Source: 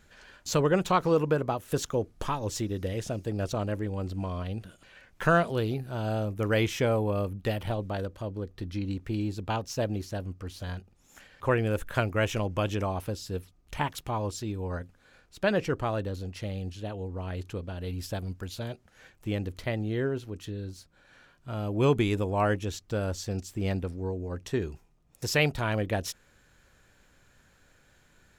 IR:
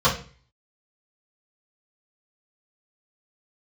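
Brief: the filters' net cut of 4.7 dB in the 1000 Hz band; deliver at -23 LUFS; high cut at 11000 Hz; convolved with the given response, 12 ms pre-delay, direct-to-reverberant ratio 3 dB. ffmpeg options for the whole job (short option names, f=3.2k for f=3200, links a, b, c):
-filter_complex "[0:a]lowpass=11k,equalizer=f=1k:t=o:g=-6.5,asplit=2[a][b];[1:a]atrim=start_sample=2205,adelay=12[c];[b][c]afir=irnorm=-1:irlink=0,volume=-22dB[d];[a][d]amix=inputs=2:normalize=0,volume=6dB"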